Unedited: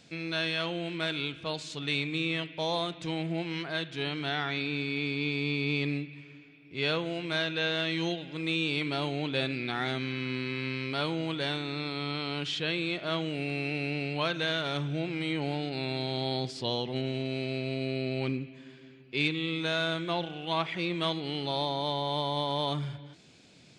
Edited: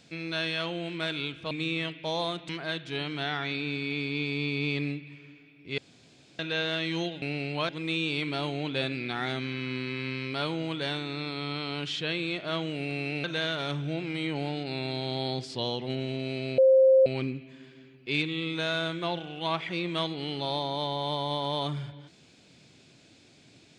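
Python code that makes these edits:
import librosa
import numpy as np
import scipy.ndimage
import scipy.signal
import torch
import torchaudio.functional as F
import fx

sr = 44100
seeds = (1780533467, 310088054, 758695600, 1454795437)

y = fx.edit(x, sr, fx.cut(start_s=1.51, length_s=0.54),
    fx.cut(start_s=3.03, length_s=0.52),
    fx.room_tone_fill(start_s=6.84, length_s=0.61),
    fx.move(start_s=13.83, length_s=0.47, to_s=8.28),
    fx.bleep(start_s=17.64, length_s=0.48, hz=528.0, db=-15.0), tone=tone)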